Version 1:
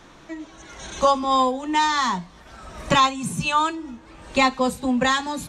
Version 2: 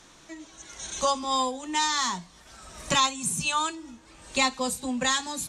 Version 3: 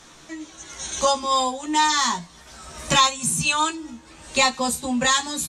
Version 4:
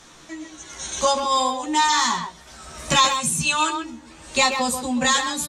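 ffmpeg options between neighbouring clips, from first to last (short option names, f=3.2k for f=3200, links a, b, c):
-af "equalizer=f=8.5k:t=o:w=2.2:g=14.5,volume=-8.5dB"
-filter_complex "[0:a]acontrast=40,asplit=2[a][b];[b]adelay=13,volume=-3.5dB[c];[a][c]amix=inputs=2:normalize=0,volume=-1.5dB"
-filter_complex "[0:a]asplit=2[a][b];[b]adelay=130,highpass=300,lowpass=3.4k,asoftclip=type=hard:threshold=-13.5dB,volume=-6dB[c];[a][c]amix=inputs=2:normalize=0"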